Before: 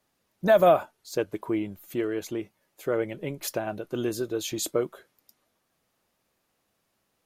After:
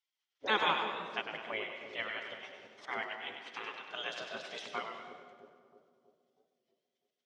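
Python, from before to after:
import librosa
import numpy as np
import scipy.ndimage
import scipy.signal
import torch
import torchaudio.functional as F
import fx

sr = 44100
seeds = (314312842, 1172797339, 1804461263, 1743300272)

p1 = fx.spec_gate(x, sr, threshold_db=-20, keep='weak')
p2 = fx.tilt_eq(p1, sr, slope=-2.0)
p3 = fx.over_compress(p2, sr, threshold_db=-59.0, ratio=-1.0, at=(2.33, 2.88), fade=0.02)
p4 = fx.cabinet(p3, sr, low_hz=360.0, low_slope=12, high_hz=5900.0, hz=(380.0, 2000.0, 3200.0, 5600.0), db=(5, 6, 9, 3))
p5 = p4 + fx.echo_split(p4, sr, split_hz=570.0, low_ms=323, high_ms=98, feedback_pct=52, wet_db=-7, dry=0)
p6 = fx.rev_plate(p5, sr, seeds[0], rt60_s=1.7, hf_ratio=0.6, predelay_ms=105, drr_db=9.0)
p7 = fx.record_warp(p6, sr, rpm=33.33, depth_cents=100.0)
y = F.gain(torch.from_numpy(p7), 2.5).numpy()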